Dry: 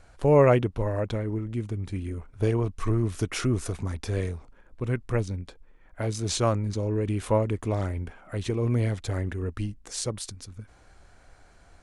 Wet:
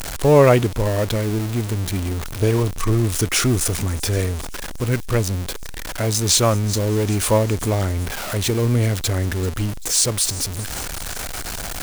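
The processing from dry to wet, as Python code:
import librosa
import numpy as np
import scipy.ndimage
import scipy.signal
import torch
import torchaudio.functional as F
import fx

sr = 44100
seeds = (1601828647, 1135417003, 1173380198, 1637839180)

y = x + 0.5 * 10.0 ** (-30.0 / 20.0) * np.sign(x)
y = fx.high_shelf(y, sr, hz=3800.0, db=9.0)
y = fx.echo_wet_highpass(y, sr, ms=389, feedback_pct=52, hz=4800.0, wet_db=-14.5)
y = y * 10.0 ** (5.0 / 20.0)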